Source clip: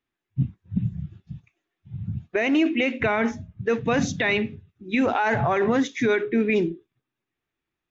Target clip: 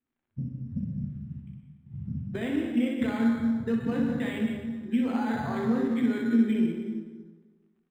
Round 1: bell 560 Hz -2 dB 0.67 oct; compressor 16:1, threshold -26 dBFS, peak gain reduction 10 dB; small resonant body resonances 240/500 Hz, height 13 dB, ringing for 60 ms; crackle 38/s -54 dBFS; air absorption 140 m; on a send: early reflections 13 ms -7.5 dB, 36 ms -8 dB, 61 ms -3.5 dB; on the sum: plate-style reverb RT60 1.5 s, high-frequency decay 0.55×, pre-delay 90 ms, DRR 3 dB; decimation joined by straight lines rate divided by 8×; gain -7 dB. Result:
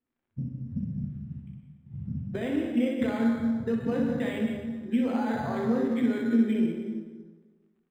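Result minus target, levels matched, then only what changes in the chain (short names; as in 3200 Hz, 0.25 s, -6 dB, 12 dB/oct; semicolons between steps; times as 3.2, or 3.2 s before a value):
500 Hz band +3.0 dB
change: bell 560 Hz -9.5 dB 0.67 oct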